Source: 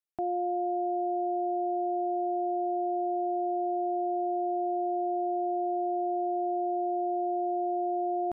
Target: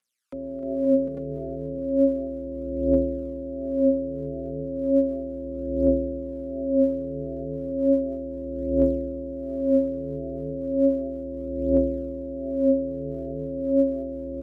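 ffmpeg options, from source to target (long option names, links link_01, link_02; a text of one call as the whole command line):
ffmpeg -i in.wav -filter_complex "[0:a]firequalizer=gain_entry='entry(150,0);entry(230,-26);entry(400,-2);entry(640,12);entry(1100,0);entry(2200,13)':delay=0.05:min_phase=1,asetrate=25442,aresample=44100,aecho=1:1:304|608|912|1216|1520|1824|2128|2432:0.562|0.332|0.196|0.115|0.0681|0.0402|0.0237|0.014,acrossover=split=440[link_01][link_02];[link_02]alimiter=level_in=9dB:limit=-24dB:level=0:latency=1,volume=-9dB[link_03];[link_01][link_03]amix=inputs=2:normalize=0,tremolo=f=120:d=0.4,asplit=2[link_04][link_05];[link_05]aecho=0:1:266|520|748|847:0.2|0.266|0.422|0.631[link_06];[link_04][link_06]amix=inputs=2:normalize=0,aphaser=in_gain=1:out_gain=1:delay=3.9:decay=0.76:speed=0.34:type=triangular,highpass=63,aeval=exprs='val(0)*sin(2*PI*140*n/s)':channel_layout=same" out.wav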